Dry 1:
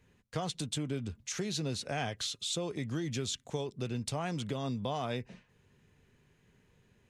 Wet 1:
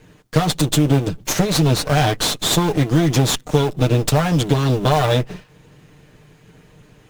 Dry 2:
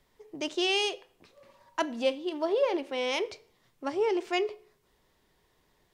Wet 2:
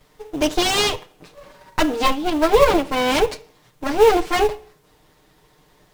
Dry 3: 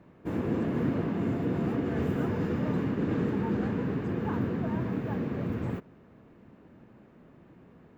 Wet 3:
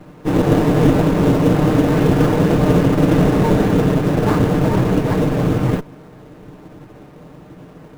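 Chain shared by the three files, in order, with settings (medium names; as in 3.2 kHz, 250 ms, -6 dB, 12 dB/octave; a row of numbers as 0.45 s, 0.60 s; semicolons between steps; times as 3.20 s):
comb filter that takes the minimum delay 6.6 ms; in parallel at -8 dB: sample-rate reducer 3.2 kHz, jitter 20%; on the sum: AAC 192 kbps 44.1 kHz; peak normalisation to -1.5 dBFS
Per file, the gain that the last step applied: +17.5 dB, +13.0 dB, +14.0 dB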